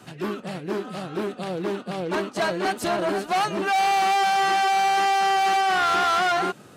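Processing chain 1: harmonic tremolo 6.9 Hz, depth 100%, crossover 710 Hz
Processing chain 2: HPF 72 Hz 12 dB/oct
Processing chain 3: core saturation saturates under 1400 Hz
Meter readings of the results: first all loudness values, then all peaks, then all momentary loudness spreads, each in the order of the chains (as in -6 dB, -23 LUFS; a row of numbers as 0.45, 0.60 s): -28.0, -23.0, -26.0 LUFS; -14.5, -14.5, -15.5 dBFS; 10, 10, 11 LU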